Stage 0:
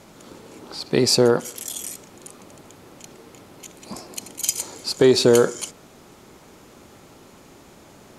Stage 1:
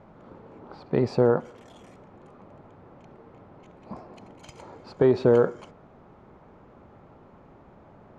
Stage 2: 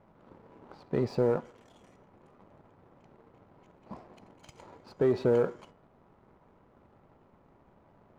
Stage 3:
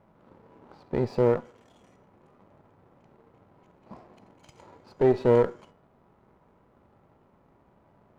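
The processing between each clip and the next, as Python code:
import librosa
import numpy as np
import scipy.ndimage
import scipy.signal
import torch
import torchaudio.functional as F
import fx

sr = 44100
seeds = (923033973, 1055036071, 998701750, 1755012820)

y1 = scipy.signal.sosfilt(scipy.signal.butter(2, 1100.0, 'lowpass', fs=sr, output='sos'), x)
y1 = fx.peak_eq(y1, sr, hz=320.0, db=-6.0, octaves=1.2)
y2 = fx.comb_fb(y1, sr, f0_hz=970.0, decay_s=0.34, harmonics='all', damping=0.0, mix_pct=70)
y2 = fx.leveller(y2, sr, passes=1)
y2 = F.gain(torch.from_numpy(y2), 1.5).numpy()
y3 = fx.cheby_harmonics(y2, sr, harmonics=(2, 7), levels_db=(-8, -28), full_scale_db=-15.0)
y3 = fx.hpss(y3, sr, part='harmonic', gain_db=5)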